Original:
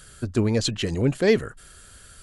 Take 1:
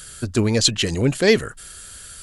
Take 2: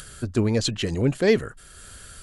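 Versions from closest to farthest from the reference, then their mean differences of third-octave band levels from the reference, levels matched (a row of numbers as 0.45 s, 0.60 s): 2, 1; 1.5 dB, 2.5 dB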